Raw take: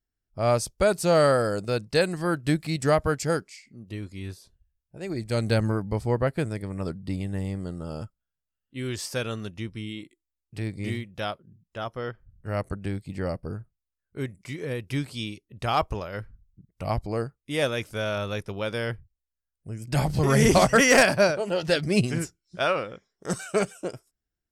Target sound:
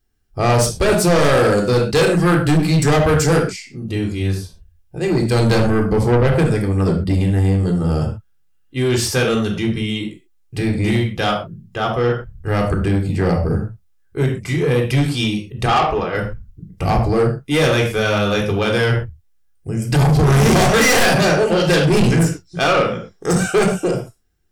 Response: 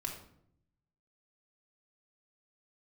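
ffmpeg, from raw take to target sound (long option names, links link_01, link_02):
-filter_complex "[0:a]aeval=exprs='0.473*(cos(1*acos(clip(val(0)/0.473,-1,1)))-cos(1*PI/2))+0.237*(cos(5*acos(clip(val(0)/0.473,-1,1)))-cos(5*PI/2))':channel_layout=same,asettb=1/sr,asplit=3[link_01][link_02][link_03];[link_01]atrim=end=15.664[link_04];[link_02]atrim=start=15.66:end=16.15,asetpts=PTS-STARTPTS,afade=type=in:duration=0.004:curve=qsin,afade=type=out:start_time=0.486:duration=0.004:curve=qsin,acrossover=split=230 4400:gain=0.251 1 0.0708[link_05][link_06][link_07];[link_05][link_06][link_07]amix=inputs=3:normalize=0[link_08];[link_03]atrim=start=16.146[link_09];[link_04][link_08]acrossfade=duration=0.004:curve1=hsin:curve2=qsin[link_10];[link_10][link_09]acrossfade=duration=0.004:curve1=qsin:curve2=hsin[link_11];[1:a]atrim=start_sample=2205,afade=type=out:start_time=0.21:duration=0.01,atrim=end_sample=9702,asetrate=52920,aresample=44100[link_12];[link_11][link_12]afir=irnorm=-1:irlink=0,asoftclip=type=tanh:threshold=-16dB,volume=6dB"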